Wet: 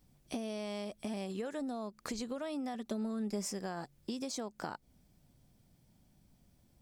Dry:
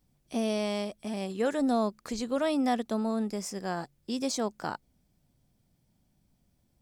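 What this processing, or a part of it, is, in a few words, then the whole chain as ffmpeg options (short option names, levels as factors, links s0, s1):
serial compression, leveller first: -filter_complex "[0:a]acompressor=threshold=0.0282:ratio=2.5,acompressor=threshold=0.01:ratio=6,asettb=1/sr,asplit=3[s0][s1][s2];[s0]atrim=end=2.744[s3];[s1]atrim=start=2.74:end=3.52,asetpts=PTS-STARTPTS,afade=t=in:d=0.004:c=qsin,afade=t=out:st=0.776:d=0.004:c=qsin,aecho=1:1:5.1:0.66,atrim=end_sample=34398[s4];[s2]atrim=start=3.516[s5];[s3][s4]acrossfade=d=0.004:c1=hsin:c2=qsin[s6];[s6][s5]acrossfade=d=0.004:c1=qsin:c2=hsin,volume=1.5"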